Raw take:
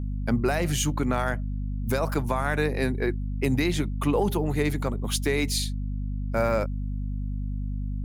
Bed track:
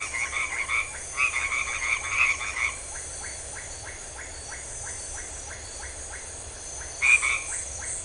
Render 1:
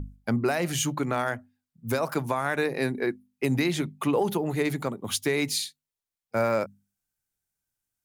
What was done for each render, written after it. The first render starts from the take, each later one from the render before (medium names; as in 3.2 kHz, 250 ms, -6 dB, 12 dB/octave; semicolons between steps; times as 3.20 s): hum notches 50/100/150/200/250 Hz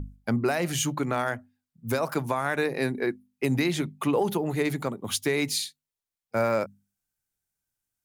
no audible change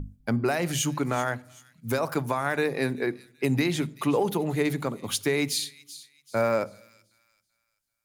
feedback echo behind a high-pass 384 ms, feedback 34%, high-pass 3.5 kHz, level -14 dB; simulated room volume 1900 m³, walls furnished, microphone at 0.31 m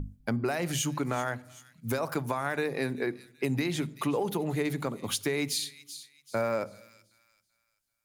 compression 2:1, threshold -29 dBFS, peak gain reduction 5.5 dB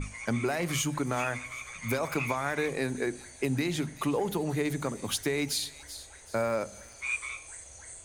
add bed track -13.5 dB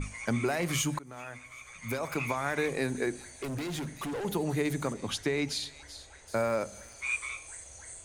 0.99–2.57 s: fade in, from -20 dB; 3.29–4.25 s: hard clipper -33 dBFS; 4.93–6.28 s: distance through air 60 m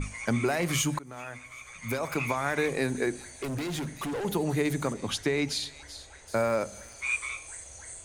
trim +2.5 dB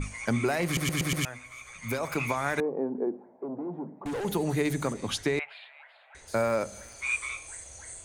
0.65 s: stutter in place 0.12 s, 5 plays; 2.60–4.06 s: Chebyshev band-pass 190–920 Hz, order 3; 5.39–6.15 s: elliptic band-pass 650–2800 Hz